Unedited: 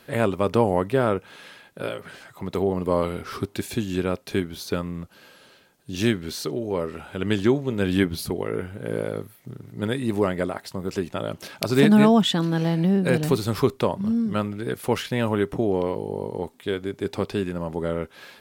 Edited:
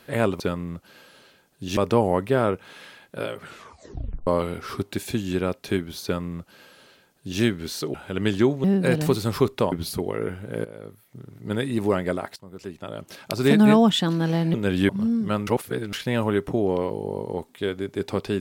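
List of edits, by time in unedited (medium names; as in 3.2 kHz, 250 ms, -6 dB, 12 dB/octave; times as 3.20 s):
2.05 s: tape stop 0.85 s
4.67–6.04 s: copy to 0.40 s
6.57–6.99 s: delete
7.69–8.04 s: swap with 12.86–13.94 s
8.97–9.91 s: fade in, from -16.5 dB
10.68–12.02 s: fade in, from -16.5 dB
14.52–14.98 s: reverse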